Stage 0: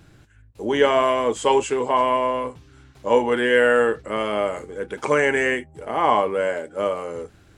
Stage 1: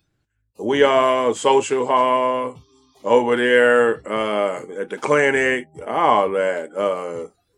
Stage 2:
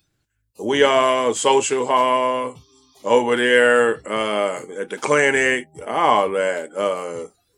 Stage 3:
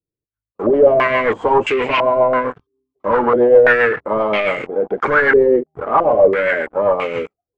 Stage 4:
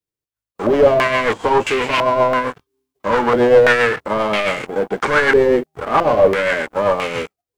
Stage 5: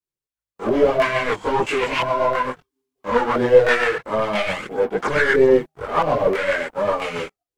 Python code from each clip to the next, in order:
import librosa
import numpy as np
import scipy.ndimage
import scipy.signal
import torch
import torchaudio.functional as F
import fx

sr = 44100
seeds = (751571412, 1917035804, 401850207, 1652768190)

y1 = fx.spec_repair(x, sr, seeds[0], start_s=2.66, length_s=0.28, low_hz=910.0, high_hz=6300.0, source='before')
y1 = fx.noise_reduce_blind(y1, sr, reduce_db=22)
y1 = y1 * 10.0 ** (2.5 / 20.0)
y2 = fx.high_shelf(y1, sr, hz=3100.0, db=9.0)
y2 = y2 * 10.0 ** (-1.0 / 20.0)
y3 = fx.leveller(y2, sr, passes=5)
y3 = fx.rotary(y3, sr, hz=7.5)
y3 = fx.filter_held_lowpass(y3, sr, hz=3.0, low_hz=460.0, high_hz=2400.0)
y3 = y3 * 10.0 ** (-9.5 / 20.0)
y4 = fx.envelope_flatten(y3, sr, power=0.6)
y4 = y4 * 10.0 ** (-1.0 / 20.0)
y5 = fx.chorus_voices(y4, sr, voices=4, hz=0.75, base_ms=22, depth_ms=4.0, mix_pct=65)
y5 = y5 * 10.0 ** (-1.5 / 20.0)